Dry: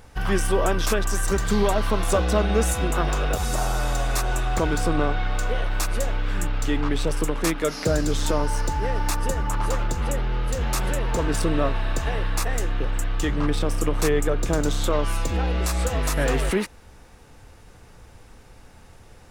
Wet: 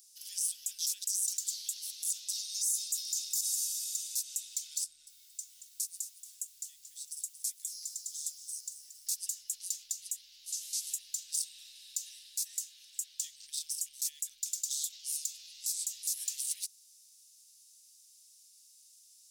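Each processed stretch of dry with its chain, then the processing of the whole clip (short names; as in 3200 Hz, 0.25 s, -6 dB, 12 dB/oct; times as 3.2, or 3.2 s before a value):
2.33–3.41 steep high-pass 160 Hz + resonant high shelf 3800 Hz +8.5 dB, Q 1.5
4.84–9.07 LPF 11000 Hz + bell 3300 Hz -13 dB 2.4 oct + lo-fi delay 0.228 s, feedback 35%, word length 8-bit, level -11 dB
10.46–10.94 delta modulation 64 kbps, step -38 dBFS + HPF 120 Hz + doubler 13 ms -3 dB
12.39–13.17 HPF 94 Hz + small resonant body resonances 400/630/1100 Hz, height 12 dB, ringing for 20 ms
whole clip: inverse Chebyshev high-pass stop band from 1200 Hz, stop band 70 dB; limiter -25 dBFS; gain +4 dB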